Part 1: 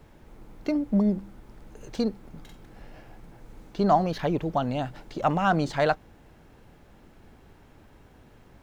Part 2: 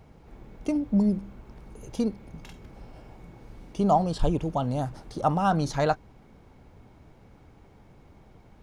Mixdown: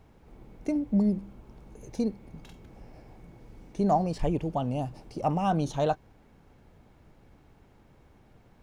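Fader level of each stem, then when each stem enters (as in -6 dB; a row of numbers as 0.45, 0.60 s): -9.5, -6.0 dB; 0.00, 0.00 s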